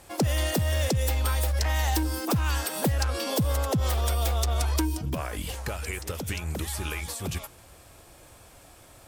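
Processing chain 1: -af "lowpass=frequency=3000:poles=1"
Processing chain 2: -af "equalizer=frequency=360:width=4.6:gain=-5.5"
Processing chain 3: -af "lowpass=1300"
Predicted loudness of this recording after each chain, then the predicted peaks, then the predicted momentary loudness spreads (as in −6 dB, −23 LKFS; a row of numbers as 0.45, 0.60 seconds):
−29.0, −28.0, −29.0 LKFS; −18.5, −17.5, −18.5 dBFS; 8, 8, 9 LU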